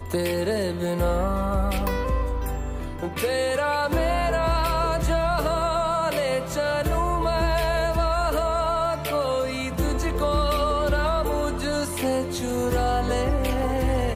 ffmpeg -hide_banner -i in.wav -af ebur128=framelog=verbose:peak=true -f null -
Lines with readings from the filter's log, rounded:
Integrated loudness:
  I:         -24.4 LUFS
  Threshold: -34.4 LUFS
Loudness range:
  LRA:         1.9 LU
  Threshold: -44.3 LUFS
  LRA low:   -25.5 LUFS
  LRA high:  -23.6 LUFS
True peak:
  Peak:      -12.8 dBFS